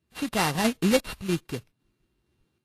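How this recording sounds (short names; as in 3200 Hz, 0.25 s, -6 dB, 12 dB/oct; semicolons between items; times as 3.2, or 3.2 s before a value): a buzz of ramps at a fixed pitch in blocks of 16 samples; random-step tremolo 3.1 Hz; aliases and images of a low sample rate 6800 Hz, jitter 20%; Vorbis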